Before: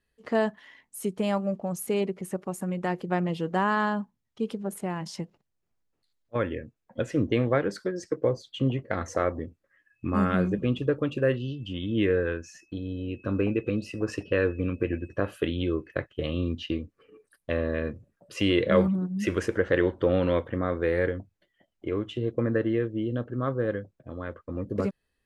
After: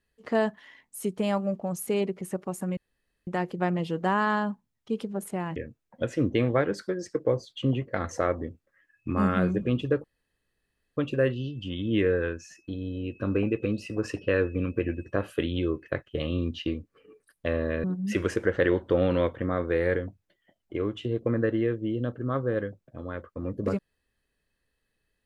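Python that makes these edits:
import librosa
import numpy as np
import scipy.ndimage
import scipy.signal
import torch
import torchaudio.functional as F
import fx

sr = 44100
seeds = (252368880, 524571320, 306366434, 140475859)

y = fx.edit(x, sr, fx.insert_room_tone(at_s=2.77, length_s=0.5),
    fx.cut(start_s=5.06, length_s=1.47),
    fx.insert_room_tone(at_s=11.01, length_s=0.93),
    fx.cut(start_s=17.88, length_s=1.08), tone=tone)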